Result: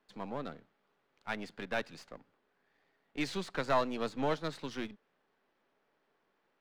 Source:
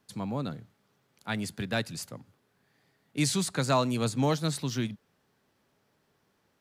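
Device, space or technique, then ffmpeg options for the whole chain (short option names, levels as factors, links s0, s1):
crystal radio: -af "highpass=320,lowpass=2900,aeval=exprs='if(lt(val(0),0),0.447*val(0),val(0))':c=same"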